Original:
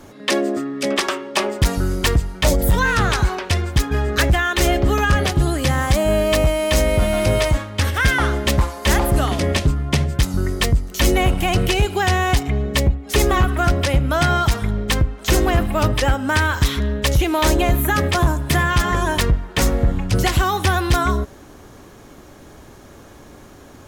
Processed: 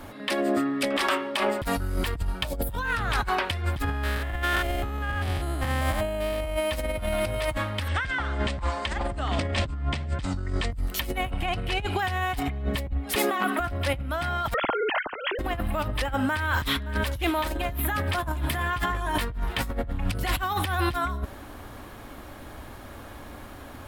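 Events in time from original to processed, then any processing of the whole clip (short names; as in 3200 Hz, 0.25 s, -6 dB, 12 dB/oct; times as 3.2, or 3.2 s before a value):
2.2–2.89 notch 2000 Hz, Q 5.1
3.84–6.57 stepped spectrum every 0.2 s
7.88–10.72 steep low-pass 8600 Hz 72 dB/oct
11.31–11.99 air absorption 51 m
13.15–13.6 elliptic high-pass 190 Hz
14.54–15.39 sine-wave speech
16.25–17.35 echo throw 0.57 s, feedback 60%, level -12.5 dB
18.57–19.71 doubler 17 ms -5 dB
whole clip: fifteen-band EQ 160 Hz -9 dB, 400 Hz -8 dB, 6300 Hz -12 dB; limiter -16 dBFS; negative-ratio compressor -26 dBFS, ratio -0.5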